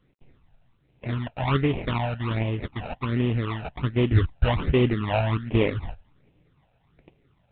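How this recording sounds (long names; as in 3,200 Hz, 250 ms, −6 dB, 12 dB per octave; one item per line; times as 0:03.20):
aliases and images of a low sample rate 1,600 Hz, jitter 20%
phaser sweep stages 12, 1.3 Hz, lowest notch 340–1,400 Hz
mu-law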